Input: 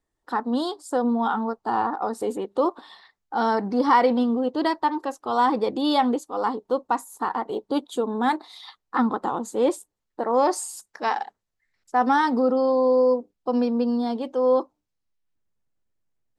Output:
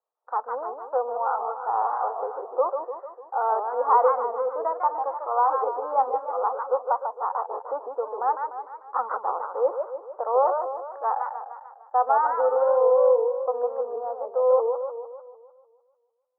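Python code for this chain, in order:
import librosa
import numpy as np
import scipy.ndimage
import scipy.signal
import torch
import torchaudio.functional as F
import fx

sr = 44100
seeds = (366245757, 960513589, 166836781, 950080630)

y = scipy.signal.sosfilt(scipy.signal.ellip(3, 1.0, 50, [490.0, 1300.0], 'bandpass', fs=sr, output='sos'), x)
y = fx.echo_warbled(y, sr, ms=150, feedback_pct=55, rate_hz=2.8, cents=188, wet_db=-6.5)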